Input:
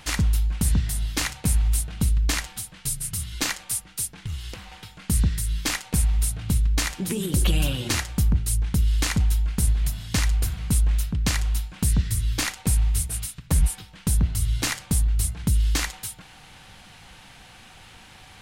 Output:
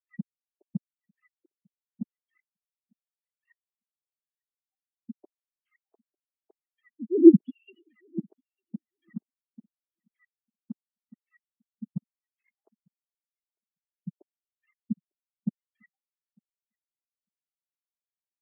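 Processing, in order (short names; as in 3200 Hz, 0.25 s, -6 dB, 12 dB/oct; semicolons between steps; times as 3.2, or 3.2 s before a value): sine-wave speech; feedback echo 0.9 s, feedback 41%, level -9 dB; spectral expander 4:1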